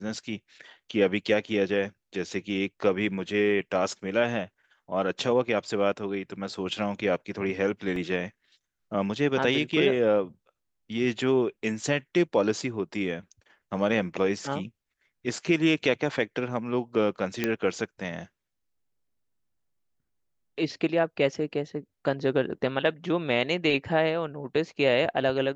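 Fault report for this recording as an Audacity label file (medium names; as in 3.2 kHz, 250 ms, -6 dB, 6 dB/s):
7.960000	7.960000	dropout 2.4 ms
17.440000	17.440000	pop -11 dBFS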